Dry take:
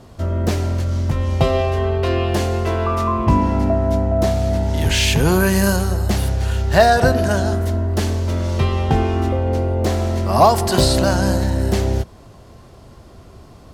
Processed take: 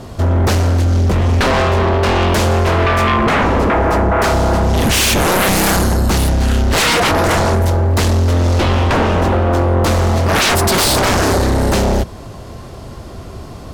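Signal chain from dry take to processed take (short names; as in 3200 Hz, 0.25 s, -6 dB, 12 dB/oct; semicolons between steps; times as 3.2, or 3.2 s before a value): 1.43–2.26 self-modulated delay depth 0.16 ms; sine folder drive 16 dB, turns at -1.5 dBFS; gain -8.5 dB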